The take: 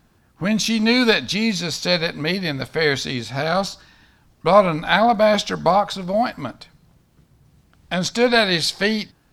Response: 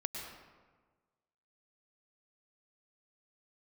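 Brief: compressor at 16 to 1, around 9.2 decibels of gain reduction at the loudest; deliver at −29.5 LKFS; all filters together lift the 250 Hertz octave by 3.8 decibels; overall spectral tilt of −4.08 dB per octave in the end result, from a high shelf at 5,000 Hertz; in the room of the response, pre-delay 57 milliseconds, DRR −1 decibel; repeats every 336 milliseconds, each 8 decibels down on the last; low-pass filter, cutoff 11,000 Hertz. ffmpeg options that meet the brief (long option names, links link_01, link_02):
-filter_complex "[0:a]lowpass=11000,equalizer=frequency=250:width_type=o:gain=4.5,highshelf=frequency=5000:gain=-6.5,acompressor=threshold=-16dB:ratio=16,aecho=1:1:336|672|1008|1344|1680:0.398|0.159|0.0637|0.0255|0.0102,asplit=2[link_01][link_02];[1:a]atrim=start_sample=2205,adelay=57[link_03];[link_02][link_03]afir=irnorm=-1:irlink=0,volume=0dB[link_04];[link_01][link_04]amix=inputs=2:normalize=0,volume=-11dB"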